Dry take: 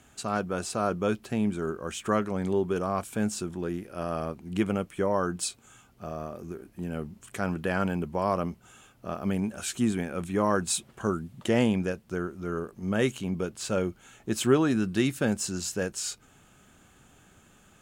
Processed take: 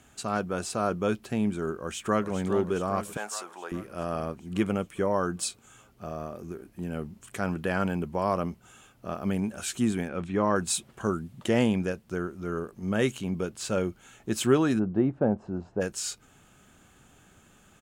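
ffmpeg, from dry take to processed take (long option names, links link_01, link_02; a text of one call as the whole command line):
ffmpeg -i in.wav -filter_complex "[0:a]asplit=2[link_01][link_02];[link_02]afade=type=in:start_time=1.78:duration=0.01,afade=type=out:start_time=2.3:duration=0.01,aecho=0:1:410|820|1230|1640|2050|2460|2870|3280|3690:0.354813|0.230629|0.149909|0.0974406|0.0633364|0.0411687|0.0267596|0.0173938|0.0113059[link_03];[link_01][link_03]amix=inputs=2:normalize=0,asettb=1/sr,asplit=3[link_04][link_05][link_06];[link_04]atrim=end=3.174[link_07];[link_05]atrim=start=3.17:end=3.72,asetpts=PTS-STARTPTS,afade=type=in:duration=0.004:curve=qsin,afade=type=out:start_time=0.546:duration=0.004:curve=qsin,highpass=frequency=820:width_type=q:width=2.4[link_08];[link_06]atrim=start=3.716[link_09];[link_07][link_08]acrossfade=duration=0.004:curve1=hsin:curve2=qsin[link_10];[link_10][link_09]acrossfade=duration=0.004:curve1=qsin:curve2=hsin,asettb=1/sr,asplit=3[link_11][link_12][link_13];[link_11]atrim=end=10.084[link_14];[link_12]atrim=start=10.08:end=10.56,asetpts=PTS-STARTPTS,afade=type=in:duration=0.004:curve=qsin,afade=type=out:start_time=0.476:duration=0.004:curve=qsin,lowpass=4400[link_15];[link_13]atrim=start=10.556[link_16];[link_14][link_15]acrossfade=duration=0.004:curve1=hsin:curve2=qsin[link_17];[link_17][link_16]acrossfade=duration=0.004:curve1=qsin:curve2=hsin,asplit=3[link_18][link_19][link_20];[link_18]afade=type=out:start_time=14.78:duration=0.02[link_21];[link_19]lowpass=frequency=760:width_type=q:width=1.9,afade=type=in:start_time=14.78:duration=0.02,afade=type=out:start_time=15.8:duration=0.02[link_22];[link_20]afade=type=in:start_time=15.8:duration=0.02[link_23];[link_21][link_22][link_23]amix=inputs=3:normalize=0" out.wav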